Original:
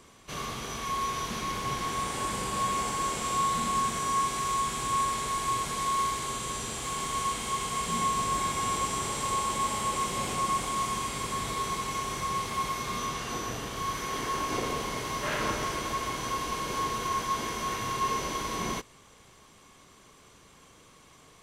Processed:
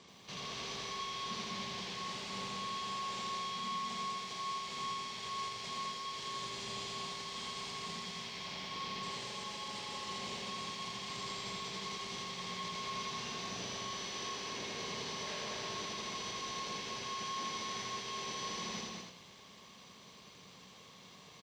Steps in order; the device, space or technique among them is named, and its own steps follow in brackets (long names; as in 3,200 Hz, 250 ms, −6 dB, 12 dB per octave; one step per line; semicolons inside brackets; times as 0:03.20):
0:08.24–0:09.03: elliptic low-pass filter 5,200 Hz
guitar amplifier (tube saturation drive 45 dB, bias 0.8; bass and treble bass −2 dB, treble +15 dB; loudspeaker in its box 100–4,400 Hz, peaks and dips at 190 Hz +8 dB, 310 Hz −5 dB, 1,400 Hz −7 dB)
single-tap delay 204 ms −3.5 dB
feedback echo at a low word length 83 ms, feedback 35%, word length 12 bits, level −3 dB
level +1 dB